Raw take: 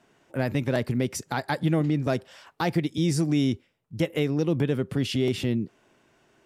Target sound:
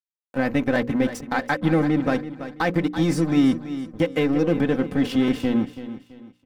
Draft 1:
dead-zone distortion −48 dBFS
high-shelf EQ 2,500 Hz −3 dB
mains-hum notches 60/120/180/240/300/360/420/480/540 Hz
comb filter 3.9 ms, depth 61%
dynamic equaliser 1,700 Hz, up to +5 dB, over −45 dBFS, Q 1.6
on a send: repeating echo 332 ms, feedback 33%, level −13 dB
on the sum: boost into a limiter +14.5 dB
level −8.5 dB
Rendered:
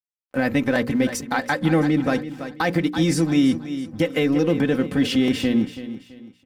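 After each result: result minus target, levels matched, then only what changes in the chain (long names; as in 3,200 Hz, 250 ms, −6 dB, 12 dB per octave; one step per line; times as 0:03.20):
dead-zone distortion: distortion −11 dB; 4,000 Hz band +4.0 dB
change: dead-zone distortion −36.5 dBFS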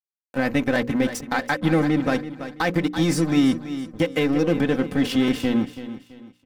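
4,000 Hz band +4.0 dB
change: high-shelf EQ 2,500 Hz −9.5 dB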